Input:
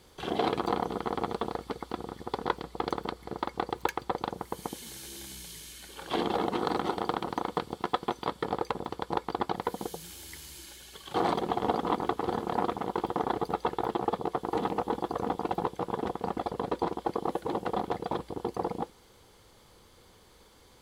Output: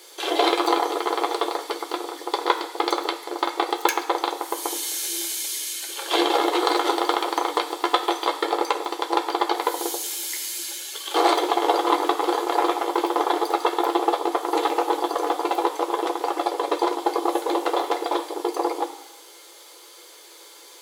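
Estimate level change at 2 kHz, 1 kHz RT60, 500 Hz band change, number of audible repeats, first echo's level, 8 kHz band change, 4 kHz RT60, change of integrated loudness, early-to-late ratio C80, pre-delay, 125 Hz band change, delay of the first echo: +11.0 dB, 1.1 s, +8.5 dB, no echo, no echo, +17.5 dB, 1.0 s, +9.0 dB, 13.0 dB, 3 ms, under -30 dB, no echo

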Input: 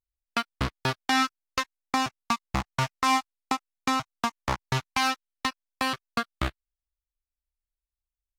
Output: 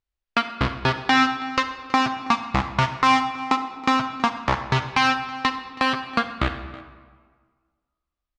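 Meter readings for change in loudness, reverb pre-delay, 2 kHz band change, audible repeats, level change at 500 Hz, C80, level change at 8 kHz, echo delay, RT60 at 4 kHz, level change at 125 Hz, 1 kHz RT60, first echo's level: +6.5 dB, 37 ms, +7.0 dB, 1, +7.0 dB, 10.0 dB, -3.0 dB, 324 ms, 1.0 s, +5.5 dB, 1.6 s, -20.5 dB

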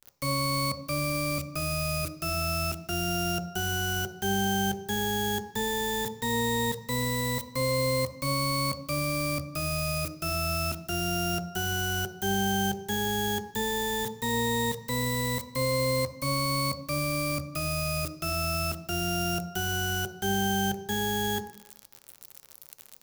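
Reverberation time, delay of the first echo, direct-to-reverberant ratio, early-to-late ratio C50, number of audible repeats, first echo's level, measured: 0.80 s, no echo, 7.0 dB, 12.0 dB, no echo, no echo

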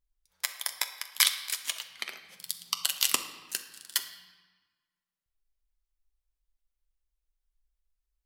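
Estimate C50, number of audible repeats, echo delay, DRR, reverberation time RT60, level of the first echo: 10.0 dB, no echo, no echo, 6.0 dB, 1.3 s, no echo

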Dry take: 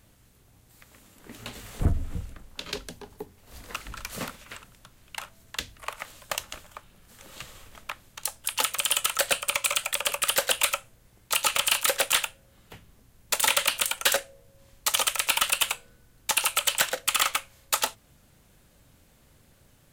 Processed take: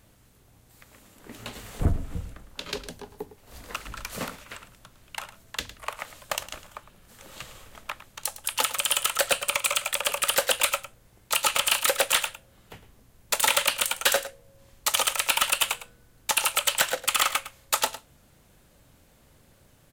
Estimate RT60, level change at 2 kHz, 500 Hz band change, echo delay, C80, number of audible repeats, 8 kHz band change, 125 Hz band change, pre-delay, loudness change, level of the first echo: no reverb, +1.0 dB, +3.0 dB, 107 ms, no reverb, 1, 0.0 dB, 0.0 dB, no reverb, +0.5 dB, -14.5 dB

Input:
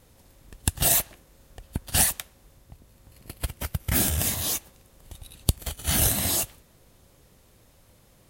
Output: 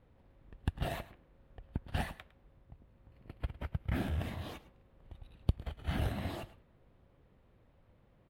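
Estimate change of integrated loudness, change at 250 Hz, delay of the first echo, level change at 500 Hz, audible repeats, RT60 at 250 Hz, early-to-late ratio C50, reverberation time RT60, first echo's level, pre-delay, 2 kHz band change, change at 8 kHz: -15.0 dB, -7.0 dB, 107 ms, -8.0 dB, 1, no reverb, no reverb, no reverb, -18.0 dB, no reverb, -11.5 dB, -36.5 dB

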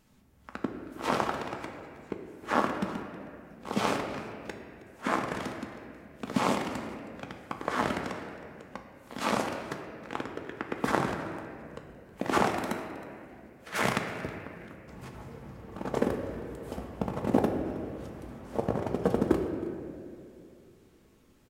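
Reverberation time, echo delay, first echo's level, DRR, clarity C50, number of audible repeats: 2.5 s, 318 ms, -19.5 dB, 2.5 dB, 5.5 dB, 1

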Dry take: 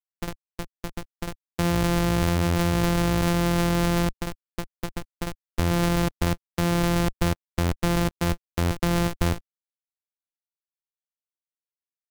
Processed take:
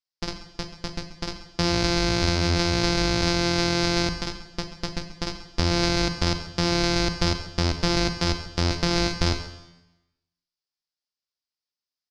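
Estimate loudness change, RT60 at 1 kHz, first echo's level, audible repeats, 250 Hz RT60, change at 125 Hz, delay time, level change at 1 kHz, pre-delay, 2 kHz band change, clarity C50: +0.5 dB, 0.95 s, -16.0 dB, 1, 0.95 s, -2.0 dB, 134 ms, -0.5 dB, 32 ms, +3.0 dB, 9.0 dB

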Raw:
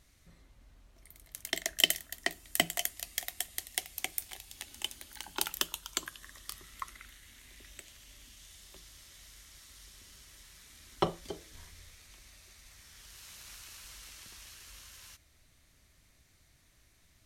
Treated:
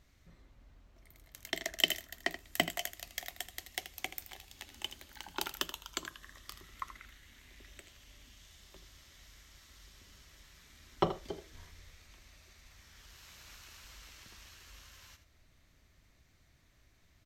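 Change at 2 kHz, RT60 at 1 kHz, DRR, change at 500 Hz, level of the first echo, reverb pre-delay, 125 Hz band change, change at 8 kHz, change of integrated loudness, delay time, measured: -1.5 dB, no reverb, no reverb, 0.0 dB, -12.0 dB, no reverb, 0.0 dB, -8.0 dB, -3.0 dB, 80 ms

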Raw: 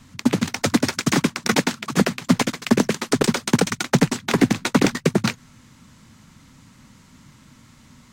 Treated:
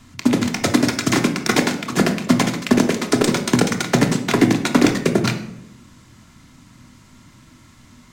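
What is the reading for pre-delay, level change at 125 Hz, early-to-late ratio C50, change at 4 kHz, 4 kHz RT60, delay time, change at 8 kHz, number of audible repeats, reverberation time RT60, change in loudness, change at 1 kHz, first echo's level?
3 ms, +1.5 dB, 10.0 dB, +2.0 dB, 0.50 s, no echo, +1.5 dB, no echo, 0.85 s, +2.5 dB, +2.5 dB, no echo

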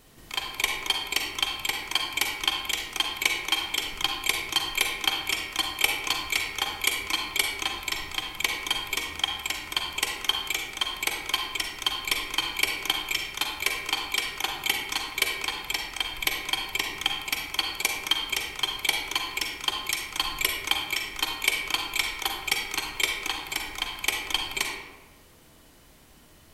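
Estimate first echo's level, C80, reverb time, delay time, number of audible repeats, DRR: no echo, 5.0 dB, 1.2 s, no echo, no echo, 1.5 dB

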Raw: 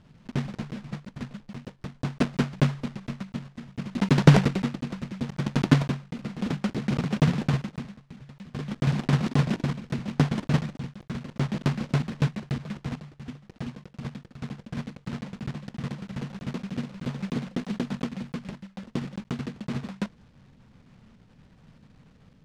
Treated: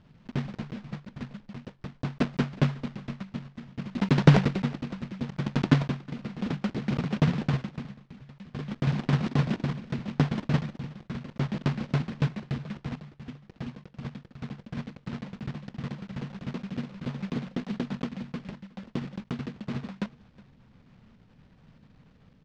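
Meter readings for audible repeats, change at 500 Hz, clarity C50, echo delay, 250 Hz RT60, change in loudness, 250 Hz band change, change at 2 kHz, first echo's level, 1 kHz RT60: 1, -2.0 dB, no reverb, 366 ms, no reverb, -2.0 dB, -2.0 dB, -2.0 dB, -22.5 dB, no reverb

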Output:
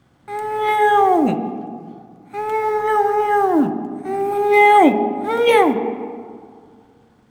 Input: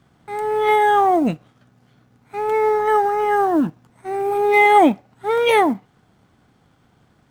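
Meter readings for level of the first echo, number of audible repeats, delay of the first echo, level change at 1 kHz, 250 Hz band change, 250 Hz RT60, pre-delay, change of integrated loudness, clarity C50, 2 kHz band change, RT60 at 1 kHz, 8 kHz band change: no echo, no echo, no echo, +1.5 dB, +2.0 dB, 2.4 s, 3 ms, +1.0 dB, 10.0 dB, +0.5 dB, 2.3 s, no reading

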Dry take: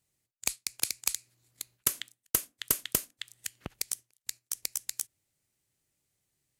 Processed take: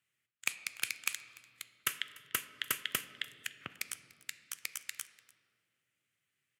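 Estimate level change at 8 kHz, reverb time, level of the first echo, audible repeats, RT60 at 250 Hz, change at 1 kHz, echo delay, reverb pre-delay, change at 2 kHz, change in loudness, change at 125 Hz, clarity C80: -9.0 dB, 2.2 s, -22.5 dB, 1, 3.3 s, +0.5 dB, 294 ms, 5 ms, +5.5 dB, -5.5 dB, -9.5 dB, 14.0 dB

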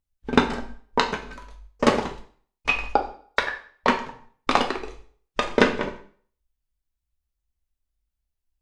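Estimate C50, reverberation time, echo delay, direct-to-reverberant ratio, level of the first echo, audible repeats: 10.0 dB, 0.50 s, no echo, 2.5 dB, no echo, no echo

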